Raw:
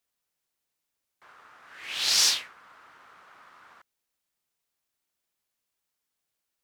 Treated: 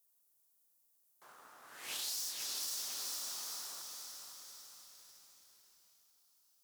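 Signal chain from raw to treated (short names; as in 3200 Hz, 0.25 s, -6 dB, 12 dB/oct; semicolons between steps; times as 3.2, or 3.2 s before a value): half-wave gain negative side -3 dB; bell 10000 Hz +2.5 dB 2.1 oct; overloaded stage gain 18.5 dB; HPF 160 Hz 12 dB/oct; diffused feedback echo 0.503 s, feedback 49%, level -12 dB; on a send at -8.5 dB: reverb RT60 3.7 s, pre-delay 0.115 s; on the sum: limiter -25.5 dBFS, peak gain reduction 9.5 dB; EQ curve 820 Hz 0 dB, 2300 Hz -9 dB, 14000 Hz +13 dB; compressor 6:1, threshold -36 dBFS, peak gain reduction 11.5 dB; lo-fi delay 0.501 s, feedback 55%, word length 10-bit, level -8 dB; gain -1 dB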